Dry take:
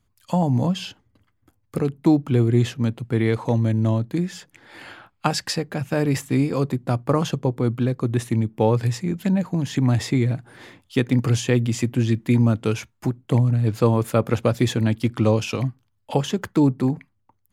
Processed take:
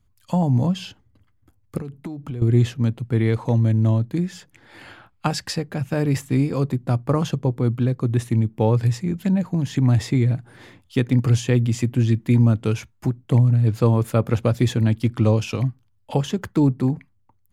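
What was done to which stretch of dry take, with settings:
0:01.77–0:02.42: downward compressor 16 to 1, threshold −27 dBFS
whole clip: low-shelf EQ 130 Hz +10 dB; level −2.5 dB

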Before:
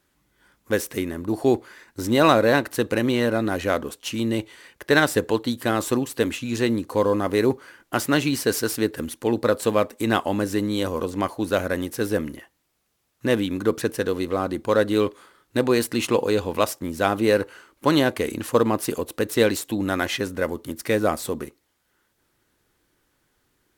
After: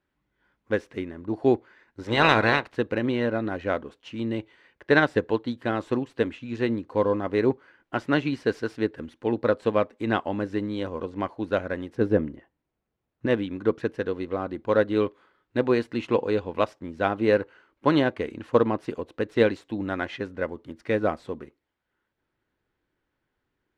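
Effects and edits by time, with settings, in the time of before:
0:02.02–0:02.74: ceiling on every frequency bin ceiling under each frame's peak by 19 dB
0:11.95–0:13.26: tilt shelving filter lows +5.5 dB
whole clip: low-pass filter 2,800 Hz 12 dB per octave; notch filter 1,200 Hz, Q 22; expander for the loud parts 1.5 to 1, over −31 dBFS

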